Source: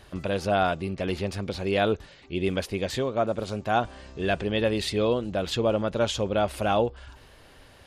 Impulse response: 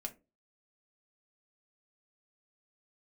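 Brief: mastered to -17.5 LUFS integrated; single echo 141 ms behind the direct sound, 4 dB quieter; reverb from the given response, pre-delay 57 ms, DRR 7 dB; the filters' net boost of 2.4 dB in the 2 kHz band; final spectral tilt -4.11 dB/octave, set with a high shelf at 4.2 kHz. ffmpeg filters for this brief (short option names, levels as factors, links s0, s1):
-filter_complex "[0:a]equalizer=f=2000:t=o:g=4.5,highshelf=f=4200:g=-4,aecho=1:1:141:0.631,asplit=2[s0][s1];[1:a]atrim=start_sample=2205,adelay=57[s2];[s1][s2]afir=irnorm=-1:irlink=0,volume=0.562[s3];[s0][s3]amix=inputs=2:normalize=0,volume=2.24"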